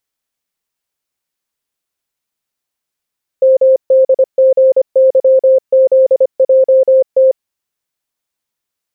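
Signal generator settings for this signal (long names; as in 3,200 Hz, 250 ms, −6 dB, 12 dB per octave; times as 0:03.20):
Morse code "MDGYZJT" 25 words per minute 526 Hz −4.5 dBFS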